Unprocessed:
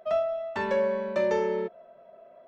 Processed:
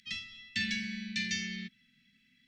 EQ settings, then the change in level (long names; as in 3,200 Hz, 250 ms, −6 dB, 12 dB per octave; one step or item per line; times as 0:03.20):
Chebyshev band-stop filter 250–1,900 Hz, order 4
parametric band 4,800 Hz +15 dB 2 octaves
0.0 dB